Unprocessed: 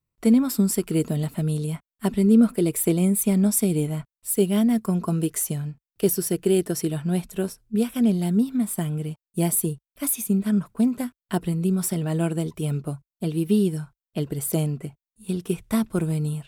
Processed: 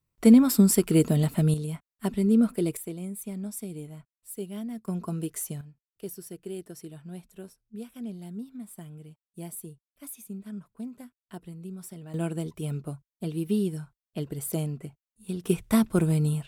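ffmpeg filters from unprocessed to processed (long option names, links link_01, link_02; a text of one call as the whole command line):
ffmpeg -i in.wav -af "asetnsamples=nb_out_samples=441:pad=0,asendcmd='1.54 volume volume -5dB;2.77 volume volume -15.5dB;4.88 volume volume -8dB;5.61 volume volume -17dB;12.14 volume volume -6dB;15.44 volume volume 1dB',volume=2dB" out.wav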